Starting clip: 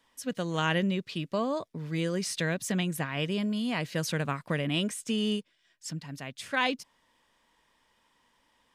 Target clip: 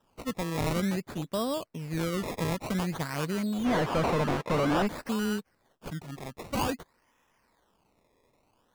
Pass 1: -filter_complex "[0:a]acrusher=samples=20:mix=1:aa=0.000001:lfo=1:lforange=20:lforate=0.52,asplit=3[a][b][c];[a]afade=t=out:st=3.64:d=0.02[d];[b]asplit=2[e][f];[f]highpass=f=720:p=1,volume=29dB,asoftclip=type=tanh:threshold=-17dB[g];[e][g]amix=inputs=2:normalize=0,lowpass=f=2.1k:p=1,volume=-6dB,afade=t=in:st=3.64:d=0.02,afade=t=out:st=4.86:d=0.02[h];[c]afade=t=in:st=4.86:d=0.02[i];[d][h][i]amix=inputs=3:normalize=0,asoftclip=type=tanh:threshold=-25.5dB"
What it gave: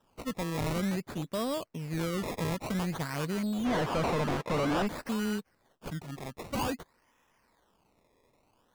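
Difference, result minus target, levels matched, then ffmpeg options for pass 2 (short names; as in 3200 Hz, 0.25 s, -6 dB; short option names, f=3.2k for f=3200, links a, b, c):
soft clip: distortion +9 dB
-filter_complex "[0:a]acrusher=samples=20:mix=1:aa=0.000001:lfo=1:lforange=20:lforate=0.52,asplit=3[a][b][c];[a]afade=t=out:st=3.64:d=0.02[d];[b]asplit=2[e][f];[f]highpass=f=720:p=1,volume=29dB,asoftclip=type=tanh:threshold=-17dB[g];[e][g]amix=inputs=2:normalize=0,lowpass=f=2.1k:p=1,volume=-6dB,afade=t=in:st=3.64:d=0.02,afade=t=out:st=4.86:d=0.02[h];[c]afade=t=in:st=4.86:d=0.02[i];[d][h][i]amix=inputs=3:normalize=0,asoftclip=type=tanh:threshold=-18.5dB"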